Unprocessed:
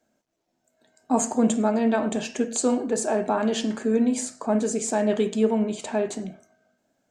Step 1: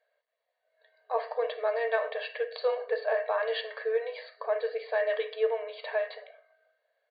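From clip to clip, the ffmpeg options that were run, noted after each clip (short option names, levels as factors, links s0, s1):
-af "afftfilt=real='re*between(b*sr/4096,430,4800)':imag='im*between(b*sr/4096,430,4800)':win_size=4096:overlap=0.75,equalizer=f=1900:w=6:g=13.5,aecho=1:1:1.8:0.5,volume=0.562"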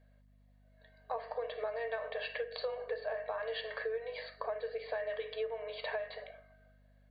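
-af "acompressor=threshold=0.0178:ratio=12,aeval=exprs='val(0)+0.000631*(sin(2*PI*50*n/s)+sin(2*PI*2*50*n/s)/2+sin(2*PI*3*50*n/s)/3+sin(2*PI*4*50*n/s)/4+sin(2*PI*5*50*n/s)/5)':c=same,volume=1.12"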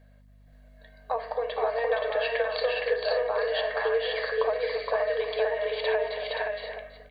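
-af "aecho=1:1:282|467|524|794|829:0.211|0.668|0.668|0.106|0.2,volume=2.66"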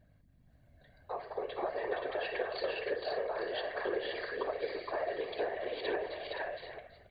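-af "afftfilt=real='hypot(re,im)*cos(2*PI*random(0))':imag='hypot(re,im)*sin(2*PI*random(1))':win_size=512:overlap=0.75,volume=0.708"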